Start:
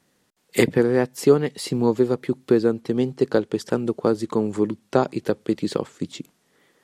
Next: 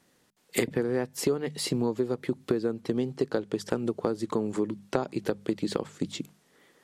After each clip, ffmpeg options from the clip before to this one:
ffmpeg -i in.wav -af "bandreject=frequency=50:width_type=h:width=6,bandreject=frequency=100:width_type=h:width=6,bandreject=frequency=150:width_type=h:width=6,bandreject=frequency=200:width_type=h:width=6,acompressor=threshold=-24dB:ratio=5" out.wav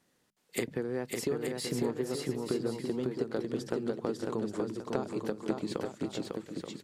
ffmpeg -i in.wav -af "aecho=1:1:550|880|1078|1197|1268:0.631|0.398|0.251|0.158|0.1,volume=-6.5dB" out.wav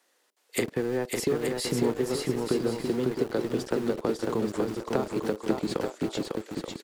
ffmpeg -i in.wav -filter_complex "[0:a]acrossover=split=370|630|1900[link_01][link_02][link_03][link_04];[link_01]aeval=exprs='val(0)*gte(abs(val(0)),0.00794)':channel_layout=same[link_05];[link_02]asplit=2[link_06][link_07];[link_07]adelay=42,volume=-8dB[link_08];[link_06][link_08]amix=inputs=2:normalize=0[link_09];[link_05][link_09][link_03][link_04]amix=inputs=4:normalize=0,volume=5.5dB" out.wav

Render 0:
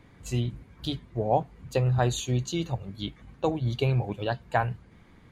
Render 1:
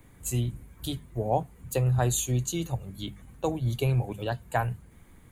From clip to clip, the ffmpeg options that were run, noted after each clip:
ffmpeg -i in.wav -filter_complex "[0:a]lowshelf=frequency=81:gain=9.5,bandreject=frequency=50:width_type=h:width=6,bandreject=frequency=100:width_type=h:width=6,bandreject=frequency=150:width_type=h:width=6,bandreject=frequency=200:width_type=h:width=6,acrossover=split=250[link_01][link_02];[link_02]aexciter=amount=4.4:drive=8.8:freq=7200[link_03];[link_01][link_03]amix=inputs=2:normalize=0,volume=-2.5dB" out.wav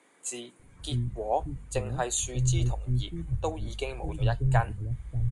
ffmpeg -i in.wav -filter_complex "[0:a]aresample=22050,aresample=44100,asubboost=boost=9:cutoff=63,acrossover=split=300[link_01][link_02];[link_01]adelay=590[link_03];[link_03][link_02]amix=inputs=2:normalize=0" out.wav

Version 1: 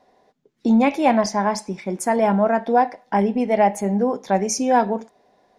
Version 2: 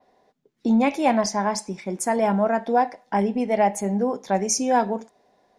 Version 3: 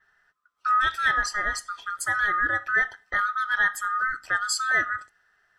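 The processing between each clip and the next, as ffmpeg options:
ffmpeg -i in.wav -af "adynamicequalizer=threshold=0.00708:dfrequency=7800:dqfactor=0.88:tfrequency=7800:tqfactor=0.88:attack=5:release=100:ratio=0.375:range=3:mode=boostabove:tftype=bell,volume=-3dB" out.wav
ffmpeg -i in.wav -af "afftfilt=real='real(if(lt(b,960),b+48*(1-2*mod(floor(b/48),2)),b),0)':imag='imag(if(lt(b,960),b+48*(1-2*mod(floor(b/48),2)),b),0)':win_size=2048:overlap=0.75,volume=-3.5dB" out.wav

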